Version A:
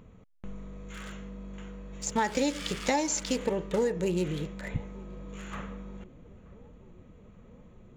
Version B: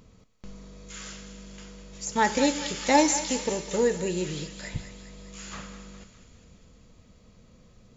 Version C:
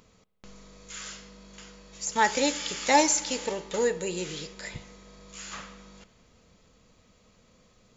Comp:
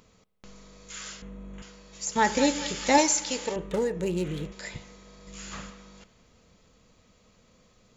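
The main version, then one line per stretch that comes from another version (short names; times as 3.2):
C
1.22–1.62 from A
2.16–2.98 from B
3.56–4.52 from A
5.27–5.7 from B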